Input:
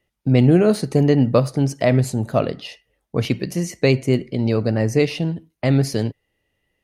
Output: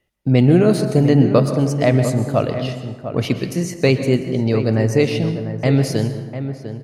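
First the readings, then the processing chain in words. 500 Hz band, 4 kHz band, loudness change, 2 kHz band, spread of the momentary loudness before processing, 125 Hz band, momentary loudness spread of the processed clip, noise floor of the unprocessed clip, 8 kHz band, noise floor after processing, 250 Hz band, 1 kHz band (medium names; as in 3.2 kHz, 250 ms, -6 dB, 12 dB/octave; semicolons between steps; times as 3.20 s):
+2.0 dB, +1.5 dB, +1.5 dB, +1.5 dB, 10 LU, +2.0 dB, 11 LU, -74 dBFS, +1.5 dB, -37 dBFS, +2.0 dB, +2.0 dB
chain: echo from a far wall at 120 m, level -10 dB; plate-style reverb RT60 1.3 s, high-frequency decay 0.5×, pre-delay 110 ms, DRR 9 dB; trim +1 dB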